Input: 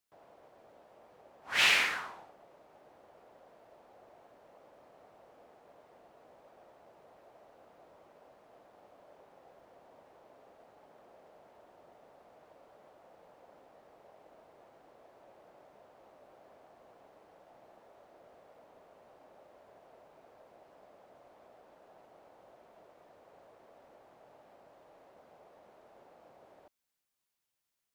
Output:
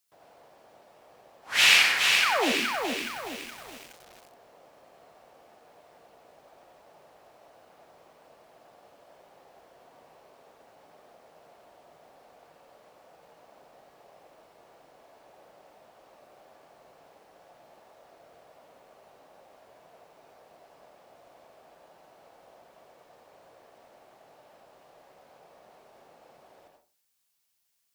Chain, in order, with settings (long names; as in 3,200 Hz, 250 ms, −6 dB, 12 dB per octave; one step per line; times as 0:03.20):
high-shelf EQ 2,600 Hz +10 dB
sound drawn into the spectrogram fall, 0:02.22–0:02.52, 210–1,700 Hz −28 dBFS
convolution reverb RT60 0.30 s, pre-delay 78 ms, DRR 1.5 dB
feedback echo at a low word length 420 ms, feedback 55%, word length 7 bits, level −4 dB